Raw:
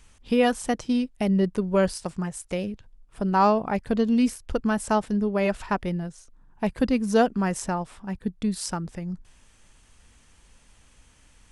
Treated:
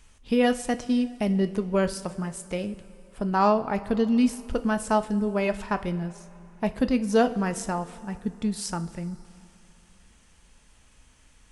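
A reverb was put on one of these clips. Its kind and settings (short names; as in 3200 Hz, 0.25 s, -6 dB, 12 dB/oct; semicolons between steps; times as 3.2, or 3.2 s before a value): two-slope reverb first 0.34 s, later 3.2 s, from -16 dB, DRR 9 dB; gain -1.5 dB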